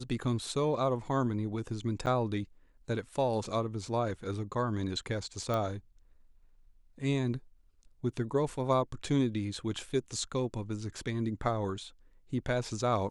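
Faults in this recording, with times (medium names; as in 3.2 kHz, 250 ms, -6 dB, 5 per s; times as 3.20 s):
2.06–2.07 s: dropout 7.9 ms
5.54 s: pop -20 dBFS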